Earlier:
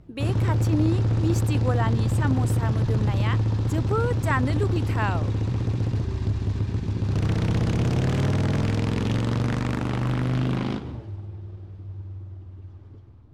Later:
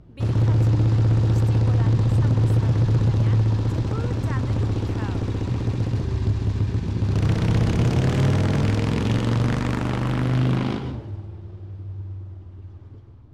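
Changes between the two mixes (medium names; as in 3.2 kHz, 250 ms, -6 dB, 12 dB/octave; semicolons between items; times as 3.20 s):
speech -11.0 dB; background: send +11.5 dB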